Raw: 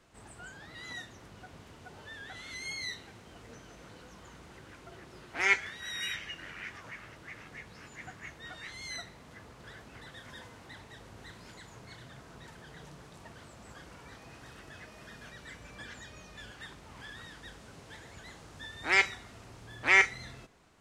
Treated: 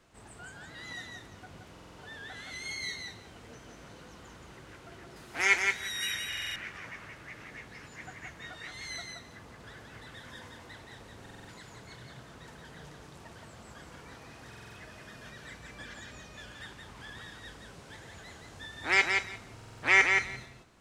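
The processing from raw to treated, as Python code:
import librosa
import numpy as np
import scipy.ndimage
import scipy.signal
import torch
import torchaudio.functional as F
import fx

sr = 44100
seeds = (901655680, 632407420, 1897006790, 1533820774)

y = fx.high_shelf(x, sr, hz=6800.0, db=11.5, at=(5.16, 6.18))
y = fx.echo_feedback(y, sr, ms=173, feedback_pct=15, wet_db=-4.5)
y = fx.buffer_glitch(y, sr, at_s=(1.71, 6.28, 11.21, 14.48, 19.55), block=2048, repeats=5)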